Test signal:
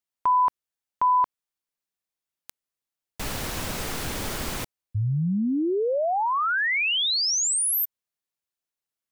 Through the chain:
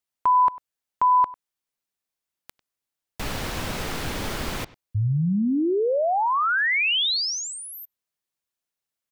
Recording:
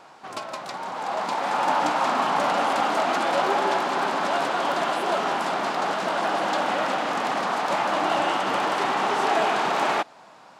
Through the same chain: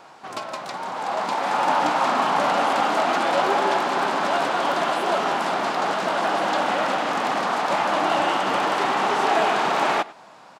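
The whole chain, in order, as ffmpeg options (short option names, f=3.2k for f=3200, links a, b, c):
-filter_complex "[0:a]acrossover=split=5100[a][b];[a]aecho=1:1:98:0.1[c];[b]acompressor=threshold=-43dB:ratio=6:attack=7.3:release=44[d];[c][d]amix=inputs=2:normalize=0,volume=2dB"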